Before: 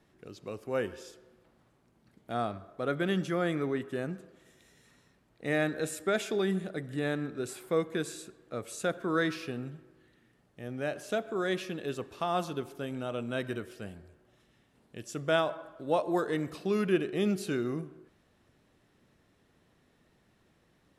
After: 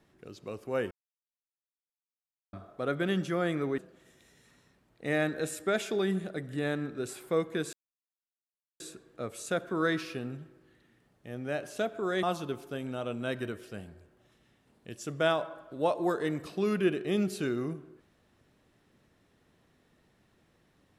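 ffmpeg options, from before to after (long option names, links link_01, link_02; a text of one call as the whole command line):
ffmpeg -i in.wav -filter_complex "[0:a]asplit=6[link_01][link_02][link_03][link_04][link_05][link_06];[link_01]atrim=end=0.91,asetpts=PTS-STARTPTS,afade=type=out:start_time=0.906:duration=0.004:curve=hsin[link_07];[link_02]atrim=start=0.91:end=2.53,asetpts=PTS-STARTPTS,volume=0[link_08];[link_03]atrim=start=2.53:end=3.782,asetpts=PTS-STARTPTS,afade=type=in:duration=0.004:curve=hsin[link_09];[link_04]atrim=start=4.178:end=8.13,asetpts=PTS-STARTPTS,afade=type=out:start_time=3.948:duration=0.004:curve=hsin,apad=pad_dur=1.07[link_10];[link_05]atrim=start=8.13:end=11.562,asetpts=PTS-STARTPTS,afade=type=in:duration=0.004:curve=hsin[link_11];[link_06]atrim=start=12.308[link_12];[link_07][link_08][link_09]concat=n=3:v=0:a=1[link_13];[link_10][link_11]concat=n=2:v=0:a=1[link_14];[link_13][link_14]acrossfade=duration=0.004:curve1=hsin:curve2=hsin[link_15];[link_15][link_12]acrossfade=duration=0.004:curve1=hsin:curve2=hsin" out.wav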